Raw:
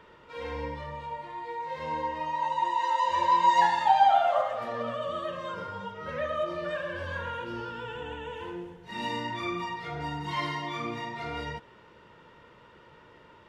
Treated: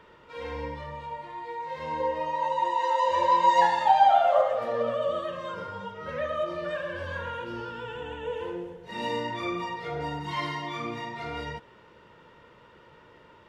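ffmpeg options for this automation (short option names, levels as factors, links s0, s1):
-af "asetnsamples=n=441:p=0,asendcmd='2 equalizer g 10.5;5.21 equalizer g 2;8.23 equalizer g 10.5;10.19 equalizer g 1.5',equalizer=f=510:t=o:w=0.51:g=0.5"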